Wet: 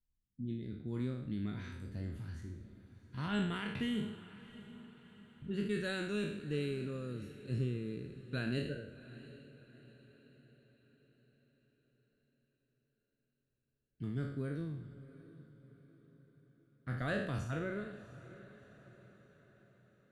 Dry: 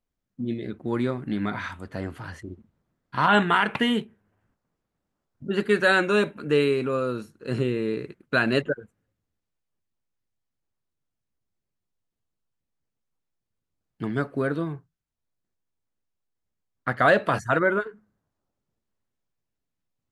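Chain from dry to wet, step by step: spectral sustain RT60 0.73 s; amplifier tone stack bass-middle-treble 10-0-1; on a send: echo that smears into a reverb 702 ms, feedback 49%, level -16 dB; on the sum: trim +5.5 dB

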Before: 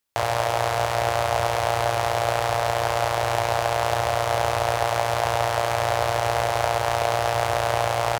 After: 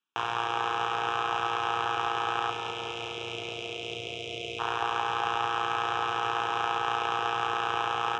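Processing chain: spectral selection erased 2.50–4.59 s, 690–2000 Hz; Chebyshev band-pass 270–3200 Hz, order 2; static phaser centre 3 kHz, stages 8; on a send: feedback echo behind a low-pass 208 ms, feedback 68%, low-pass 1.5 kHz, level -6 dB

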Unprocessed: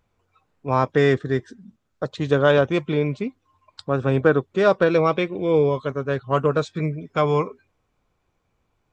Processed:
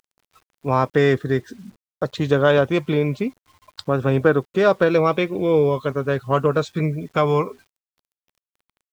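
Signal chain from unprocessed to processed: in parallel at +1 dB: compression 20:1, threshold -26 dBFS, peak gain reduction 16 dB; on the sum: bit crusher 9-bit; trim -1 dB

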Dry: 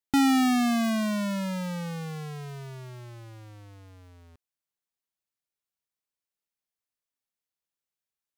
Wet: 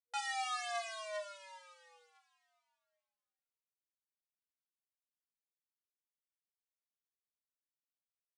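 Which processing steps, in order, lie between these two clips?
Chebyshev shaper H 3 -44 dB, 7 -17 dB, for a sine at -19 dBFS; FFT band-pass 480–10000 Hz; chord resonator D#3 sus4, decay 0.24 s; trim +4.5 dB

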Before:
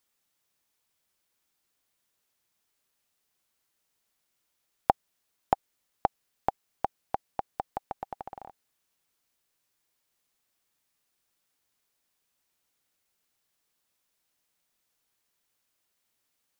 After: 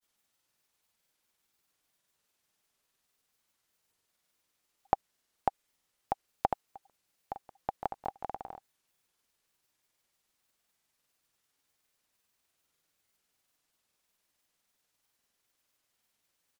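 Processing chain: granulator 100 ms, grains 20 per s; in parallel at +2 dB: peak limiter -15.5 dBFS, peak gain reduction 7.5 dB; on the sum: trim -5 dB

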